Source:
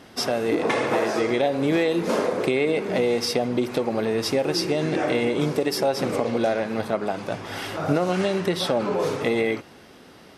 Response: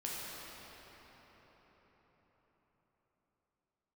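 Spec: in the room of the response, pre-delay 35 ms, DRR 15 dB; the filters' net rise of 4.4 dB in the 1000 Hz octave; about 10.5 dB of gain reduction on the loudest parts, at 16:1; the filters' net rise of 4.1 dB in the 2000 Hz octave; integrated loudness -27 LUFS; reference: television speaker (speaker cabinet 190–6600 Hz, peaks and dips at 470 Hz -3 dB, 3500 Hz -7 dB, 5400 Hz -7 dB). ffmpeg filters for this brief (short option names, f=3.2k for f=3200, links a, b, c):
-filter_complex "[0:a]equalizer=f=1k:t=o:g=5.5,equalizer=f=2k:t=o:g=4,acompressor=threshold=-26dB:ratio=16,asplit=2[a][b];[1:a]atrim=start_sample=2205,adelay=35[c];[b][c]afir=irnorm=-1:irlink=0,volume=-17.5dB[d];[a][d]amix=inputs=2:normalize=0,highpass=f=190:w=0.5412,highpass=f=190:w=1.3066,equalizer=f=470:t=q:w=4:g=-3,equalizer=f=3.5k:t=q:w=4:g=-7,equalizer=f=5.4k:t=q:w=4:g=-7,lowpass=f=6.6k:w=0.5412,lowpass=f=6.6k:w=1.3066,volume=5dB"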